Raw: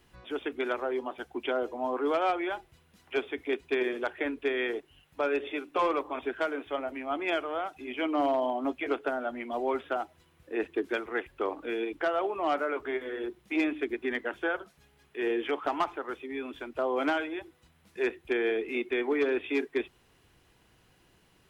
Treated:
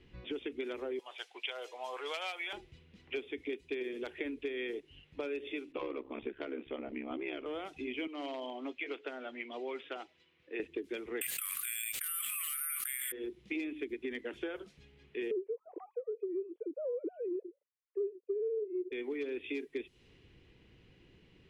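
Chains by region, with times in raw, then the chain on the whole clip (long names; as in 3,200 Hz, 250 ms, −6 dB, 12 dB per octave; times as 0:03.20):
0:00.99–0:02.53: high-pass filter 660 Hz 24 dB per octave + high-shelf EQ 3,400 Hz +11 dB
0:05.72–0:07.46: high-frequency loss of the air 260 metres + ring modulation 34 Hz
0:08.07–0:10.60: high-pass filter 1,100 Hz 6 dB per octave + high-frequency loss of the air 58 metres
0:11.21–0:13.12: Butterworth high-pass 1,200 Hz 96 dB per octave + bad sample-rate conversion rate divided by 4×, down none, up zero stuff + envelope flattener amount 100%
0:15.31–0:18.92: three sine waves on the formant tracks + low-pass with resonance 440 Hz, resonance Q 3.7
whole clip: low-pass that shuts in the quiet parts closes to 2,700 Hz, open at −26.5 dBFS; flat-topped bell 1,000 Hz −11.5 dB; downward compressor 6 to 1, threshold −40 dBFS; level +4 dB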